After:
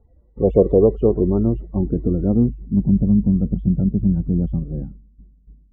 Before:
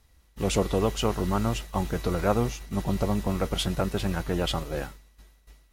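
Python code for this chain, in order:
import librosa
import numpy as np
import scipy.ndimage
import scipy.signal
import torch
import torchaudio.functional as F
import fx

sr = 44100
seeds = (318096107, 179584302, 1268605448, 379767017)

y = fx.spec_topn(x, sr, count=32)
y = fx.filter_sweep_lowpass(y, sr, from_hz=570.0, to_hz=210.0, start_s=0.17, end_s=3.0, q=2.3)
y = y * 10.0 ** (6.5 / 20.0)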